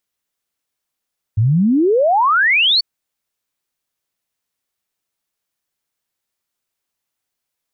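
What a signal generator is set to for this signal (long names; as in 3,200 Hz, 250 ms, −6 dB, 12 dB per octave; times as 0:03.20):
exponential sine sweep 100 Hz → 4,600 Hz 1.44 s −10.5 dBFS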